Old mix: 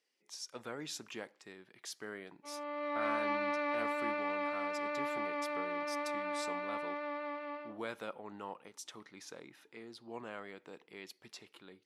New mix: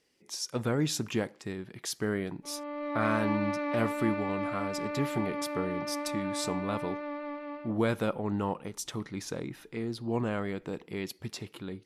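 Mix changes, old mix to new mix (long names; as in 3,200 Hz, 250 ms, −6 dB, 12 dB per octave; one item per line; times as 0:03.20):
speech +9.5 dB
master: remove meter weighting curve A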